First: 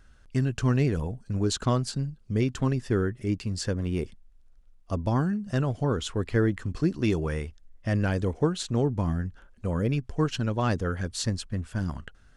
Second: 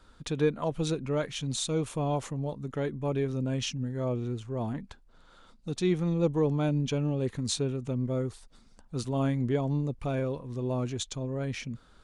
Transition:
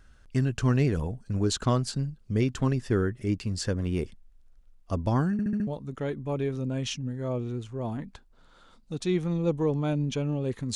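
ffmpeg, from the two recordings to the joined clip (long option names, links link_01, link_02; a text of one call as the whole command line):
ffmpeg -i cue0.wav -i cue1.wav -filter_complex "[0:a]apad=whole_dur=10.75,atrim=end=10.75,asplit=5[link_01][link_02][link_03][link_04][link_05];[link_01]atrim=end=5.392[link_06];[link_02]atrim=start=5.318:end=5.392[link_07];[link_03]atrim=start=5.318:end=5.392[link_08];[link_04]atrim=start=5.318:end=5.392[link_09];[link_05]atrim=start=5.318:end=5.392[link_10];[1:a]atrim=start=2.428:end=7.51[link_11];[link_06][link_07]acrossfade=duration=0.004:curve1=hsin:curve2=hsin[link_12];[link_12][link_08]acrossfade=duration=0.004:curve1=hsin:curve2=hsin[link_13];[link_13][link_09]acrossfade=duration=0.004:curve1=hsin:curve2=hsin[link_14];[link_14][link_10]acrossfade=duration=0.004:curve1=hsin:curve2=hsin[link_15];[link_15][link_11]acrossfade=duration=0.004:curve1=hsin:curve2=hsin" out.wav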